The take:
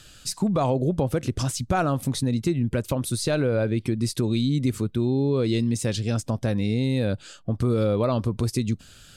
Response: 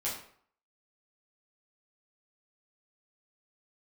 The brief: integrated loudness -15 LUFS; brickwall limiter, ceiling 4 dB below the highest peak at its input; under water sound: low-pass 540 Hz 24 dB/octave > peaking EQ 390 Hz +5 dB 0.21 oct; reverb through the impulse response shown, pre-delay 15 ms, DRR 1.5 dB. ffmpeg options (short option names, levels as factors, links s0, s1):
-filter_complex "[0:a]alimiter=limit=0.141:level=0:latency=1,asplit=2[s0][s1];[1:a]atrim=start_sample=2205,adelay=15[s2];[s1][s2]afir=irnorm=-1:irlink=0,volume=0.501[s3];[s0][s3]amix=inputs=2:normalize=0,lowpass=f=540:w=0.5412,lowpass=f=540:w=1.3066,equalizer=f=390:t=o:w=0.21:g=5,volume=2.99"